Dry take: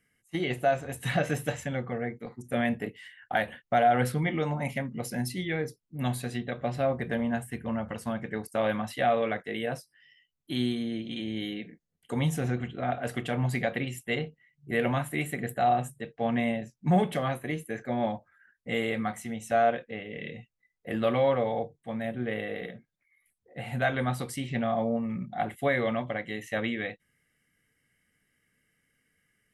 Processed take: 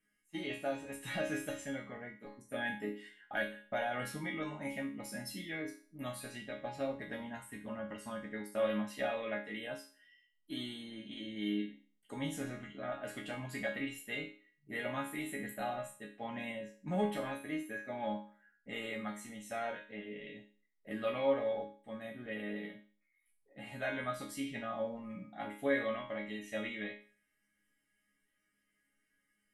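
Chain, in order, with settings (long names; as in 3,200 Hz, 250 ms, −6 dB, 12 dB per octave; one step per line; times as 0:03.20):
resonators tuned to a chord G#3 sus4, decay 0.41 s
level +11.5 dB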